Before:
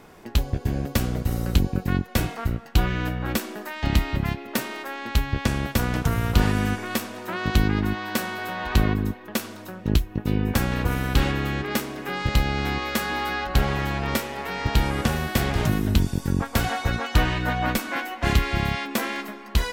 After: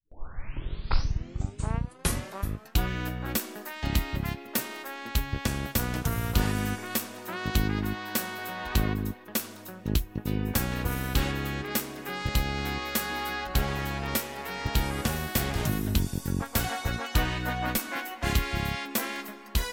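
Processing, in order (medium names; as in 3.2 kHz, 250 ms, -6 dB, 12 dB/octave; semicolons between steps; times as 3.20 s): tape start-up on the opening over 2.81 s; gate with hold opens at -35 dBFS; treble shelf 6 kHz +10 dB; trim -6 dB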